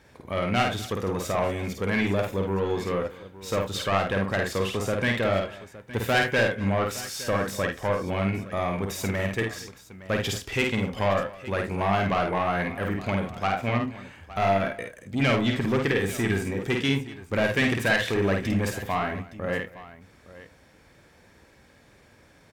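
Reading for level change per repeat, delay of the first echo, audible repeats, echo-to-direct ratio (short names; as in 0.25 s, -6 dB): no steady repeat, 51 ms, 3, -3.0 dB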